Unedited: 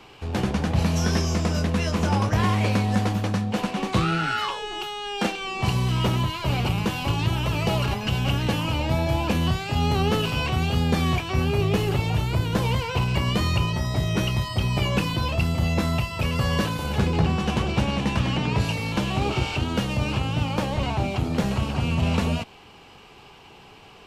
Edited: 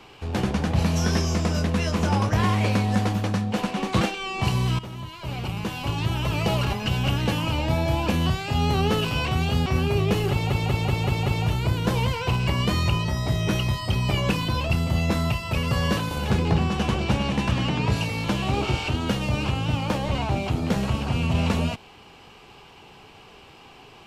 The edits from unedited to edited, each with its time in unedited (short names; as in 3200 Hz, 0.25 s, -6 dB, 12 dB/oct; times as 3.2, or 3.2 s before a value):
4.01–5.22 cut
6–7.6 fade in, from -16.5 dB
10.87–11.29 cut
11.94 stutter 0.19 s, 6 plays